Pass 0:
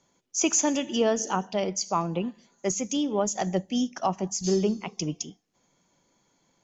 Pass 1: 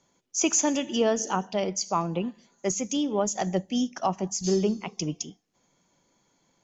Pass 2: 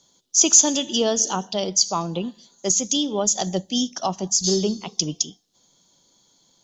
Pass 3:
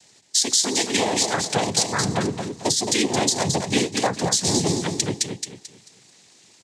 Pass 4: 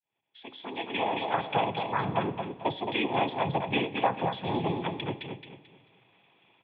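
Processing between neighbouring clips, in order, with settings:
no processing that can be heard
high shelf with overshoot 2,900 Hz +7.5 dB, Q 3; level +2 dB
downward compressor 6 to 1, threshold −25 dBFS, peak gain reduction 15 dB; cochlear-implant simulation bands 6; on a send: repeating echo 220 ms, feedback 31%, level −6 dB; on the sum: level +6.5 dB
fade in at the beginning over 1.37 s; Chebyshev low-pass with heavy ripple 3,500 Hz, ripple 9 dB; convolution reverb RT60 1.6 s, pre-delay 6 ms, DRR 11.5 dB

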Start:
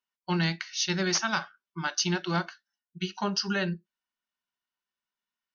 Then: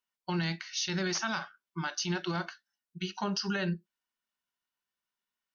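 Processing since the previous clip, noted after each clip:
brickwall limiter −23 dBFS, peak gain reduction 8 dB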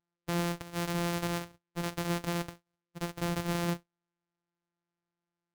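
samples sorted by size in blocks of 256 samples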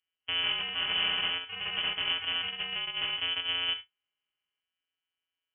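reverb whose tail is shaped and stops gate 90 ms rising, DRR 12 dB
delay with pitch and tempo change per echo 203 ms, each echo +4 semitones, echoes 3
voice inversion scrambler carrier 3,200 Hz

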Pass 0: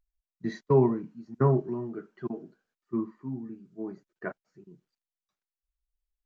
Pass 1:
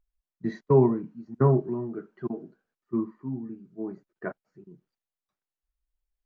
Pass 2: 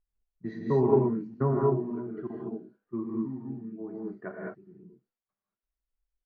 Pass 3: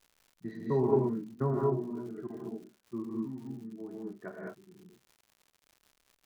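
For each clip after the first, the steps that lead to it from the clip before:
high-shelf EQ 2,600 Hz −11 dB; level +2.5 dB
reverb whose tail is shaped and stops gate 240 ms rising, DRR −2 dB; low-pass that shuts in the quiet parts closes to 2,000 Hz, open at −18.5 dBFS; level −6 dB
surface crackle 160 per second −45 dBFS; level −4 dB

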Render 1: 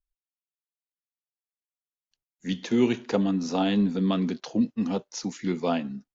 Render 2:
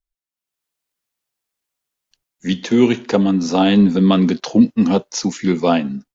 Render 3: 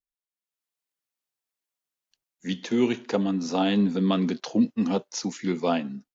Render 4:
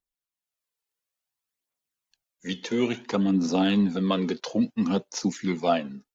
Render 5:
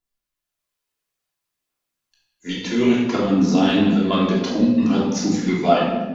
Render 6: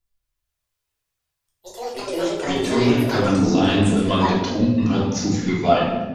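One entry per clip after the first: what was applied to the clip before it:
automatic gain control gain up to 15 dB
low-shelf EQ 86 Hz −11.5 dB; level −8.5 dB
phase shifter 0.58 Hz, delay 2.4 ms, feedback 47%
rectangular room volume 740 cubic metres, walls mixed, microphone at 3.1 metres
delay with pitch and tempo change per echo 209 ms, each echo +6 semitones, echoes 2, each echo −6 dB; low shelf with overshoot 140 Hz +10.5 dB, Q 1.5

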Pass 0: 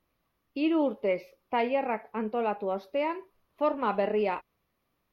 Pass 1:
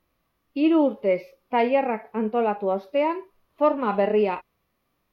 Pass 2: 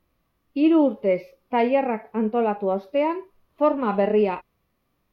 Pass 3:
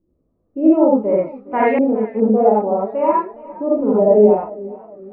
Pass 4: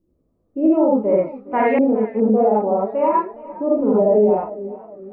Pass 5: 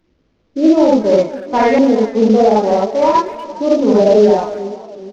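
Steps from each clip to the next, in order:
harmonic and percussive parts rebalanced harmonic +9 dB; level −2 dB
low-shelf EQ 340 Hz +5.5 dB; level −1 dB
reverb whose tail is shaped and stops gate 110 ms rising, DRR −4.5 dB; auto-filter low-pass saw up 0.56 Hz 350–1,800 Hz; feedback echo with a swinging delay time 411 ms, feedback 42%, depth 93 cents, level −19.5 dB; level −1.5 dB
brickwall limiter −7.5 dBFS, peak gain reduction 6 dB
variable-slope delta modulation 32 kbit/s; far-end echo of a speakerphone 240 ms, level −15 dB; level +5.5 dB

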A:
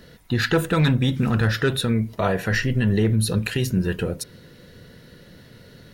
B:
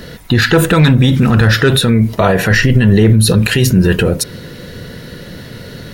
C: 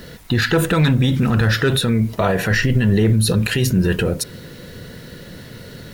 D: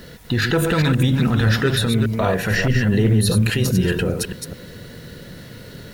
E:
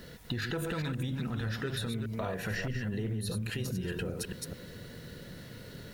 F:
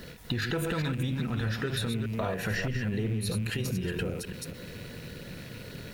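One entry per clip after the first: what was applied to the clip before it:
boost into a limiter +17.5 dB; level −1 dB
bit reduction 7 bits; level −6.5 dB
delay that plays each chunk backwards 206 ms, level −5.5 dB; level −2.5 dB
downward compressor, threshold −23 dBFS, peak gain reduction 11 dB; level −8.5 dB
loose part that buzzes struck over −47 dBFS, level −43 dBFS; every ending faded ahead of time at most 110 dB per second; level +4 dB

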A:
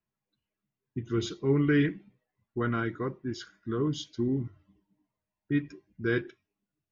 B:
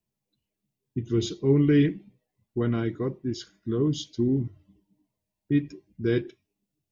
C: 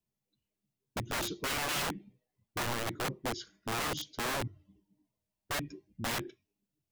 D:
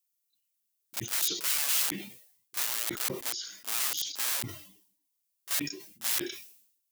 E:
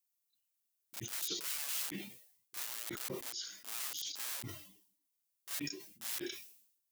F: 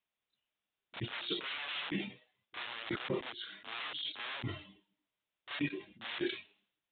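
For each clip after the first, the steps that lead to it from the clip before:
parametric band 1,400 Hz −13.5 dB 1.1 octaves; level +5 dB
wrap-around overflow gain 24.5 dB; level −4 dB
first difference; echo ahead of the sound 31 ms −13 dB; level that may fall only so fast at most 80 dB per second; level +9 dB
brickwall limiter −20 dBFS, peak gain reduction 11 dB; level −4 dB
downsampling to 8,000 Hz; level +7.5 dB

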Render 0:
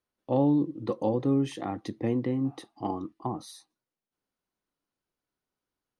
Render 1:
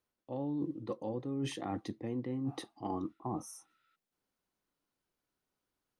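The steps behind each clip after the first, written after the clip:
healed spectral selection 0:03.12–0:03.93, 1,300–5,200 Hz before
reversed playback
downward compressor 16 to 1, threshold −34 dBFS, peak gain reduction 15.5 dB
reversed playback
level +1 dB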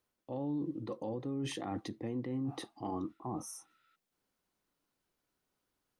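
brickwall limiter −32.5 dBFS, peak gain reduction 7.5 dB
level +3 dB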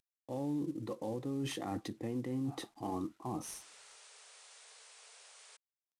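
variable-slope delta modulation 64 kbit/s
sound drawn into the spectrogram noise, 0:03.60–0:05.57, 400–9,800 Hz −58 dBFS

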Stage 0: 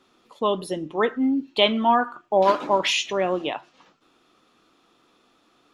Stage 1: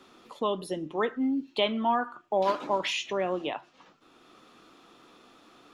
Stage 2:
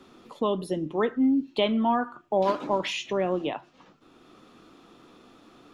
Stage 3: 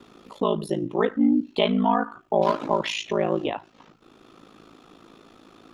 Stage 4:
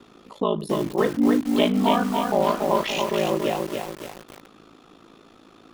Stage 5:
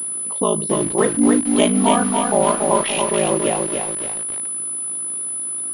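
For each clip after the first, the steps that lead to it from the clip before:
multiband upward and downward compressor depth 40%; level −6 dB
low-shelf EQ 400 Hz +9.5 dB; level −1 dB
ring modulation 27 Hz; level +5.5 dB
feedback echo at a low word length 283 ms, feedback 55%, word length 6 bits, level −3 dB
switching amplifier with a slow clock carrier 10,000 Hz; level +4 dB

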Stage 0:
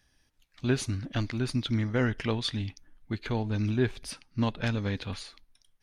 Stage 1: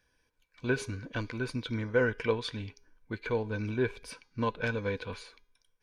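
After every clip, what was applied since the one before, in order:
hum removal 409.5 Hz, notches 17
hollow resonant body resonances 480/1,000/1,500/2,300 Hz, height 15 dB, ringing for 35 ms
level −7 dB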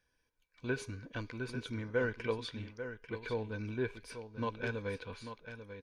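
single-tap delay 842 ms −10 dB
level −6 dB

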